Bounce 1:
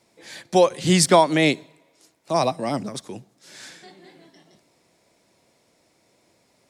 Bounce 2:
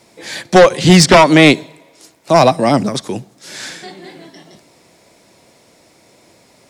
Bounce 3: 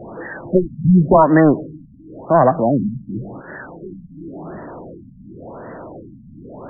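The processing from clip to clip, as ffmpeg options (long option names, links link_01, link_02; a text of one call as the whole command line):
ffmpeg -i in.wav -filter_complex "[0:a]acrossover=split=6900[link_01][link_02];[link_02]acompressor=threshold=-48dB:ratio=4:attack=1:release=60[link_03];[link_01][link_03]amix=inputs=2:normalize=0,aeval=exprs='0.708*sin(PI/2*2.51*val(0)/0.708)':channel_layout=same,volume=1.5dB" out.wav
ffmpeg -i in.wav -af "aeval=exprs='val(0)+0.5*0.0794*sgn(val(0))':channel_layout=same,afftfilt=real='re*lt(b*sr/1024,250*pow(2000/250,0.5+0.5*sin(2*PI*0.92*pts/sr)))':imag='im*lt(b*sr/1024,250*pow(2000/250,0.5+0.5*sin(2*PI*0.92*pts/sr)))':win_size=1024:overlap=0.75,volume=-3.5dB" out.wav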